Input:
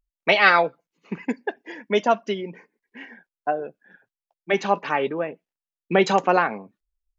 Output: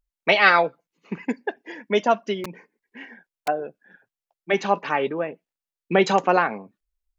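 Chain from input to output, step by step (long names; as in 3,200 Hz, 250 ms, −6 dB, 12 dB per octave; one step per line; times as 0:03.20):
0:02.44–0:03.48: wrap-around overflow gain 26 dB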